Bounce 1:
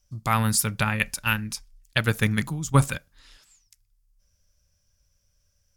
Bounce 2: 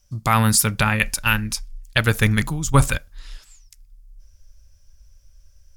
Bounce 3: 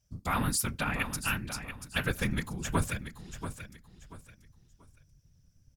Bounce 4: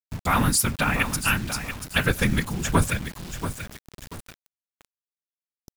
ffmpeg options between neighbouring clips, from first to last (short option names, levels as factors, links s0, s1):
-filter_complex "[0:a]asubboost=boost=7:cutoff=63,asplit=2[s0][s1];[s1]alimiter=limit=0.178:level=0:latency=1:release=17,volume=0.75[s2];[s0][s2]amix=inputs=2:normalize=0,volume=1.26"
-filter_complex "[0:a]afftfilt=real='hypot(re,im)*cos(2*PI*random(0))':imag='hypot(re,im)*sin(2*PI*random(1))':win_size=512:overlap=0.75,asplit=2[s0][s1];[s1]aecho=0:1:685|1370|2055:0.316|0.0885|0.0248[s2];[s0][s2]amix=inputs=2:normalize=0,volume=0.473"
-af "acrusher=bits=7:mix=0:aa=0.000001,volume=2.66"